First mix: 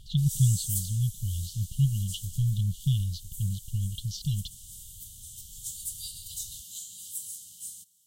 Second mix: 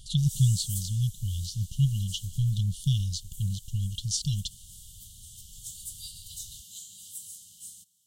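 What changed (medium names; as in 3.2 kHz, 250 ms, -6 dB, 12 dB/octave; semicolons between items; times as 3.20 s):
speech: remove distance through air 220 m; master: add treble shelf 7.6 kHz -7 dB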